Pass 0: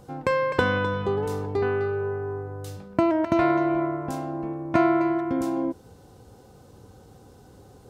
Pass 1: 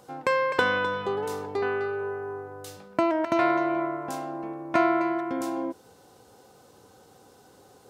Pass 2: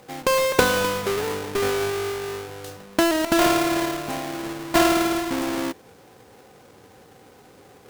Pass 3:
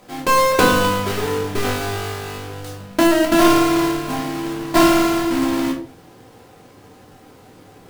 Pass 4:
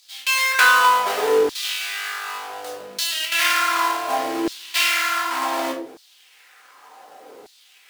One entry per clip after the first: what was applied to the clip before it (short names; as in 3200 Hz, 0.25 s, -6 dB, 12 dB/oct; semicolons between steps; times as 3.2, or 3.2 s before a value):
HPF 610 Hz 6 dB/oct; gain +2 dB
half-waves squared off
shoebox room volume 300 m³, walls furnished, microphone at 2.9 m; gain -1.5 dB
LFO high-pass saw down 0.67 Hz 370–4400 Hz